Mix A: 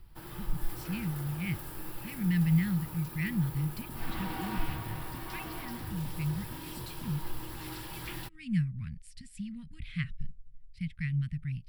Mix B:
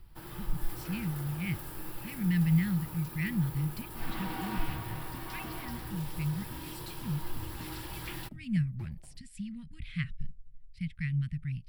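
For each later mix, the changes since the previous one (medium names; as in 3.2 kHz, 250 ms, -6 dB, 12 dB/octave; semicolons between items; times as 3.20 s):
second sound: entry +1.55 s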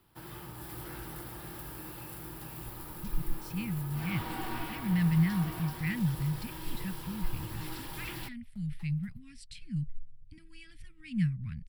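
speech: entry +2.65 s; second sound: add high-pass 1.1 kHz 12 dB/octave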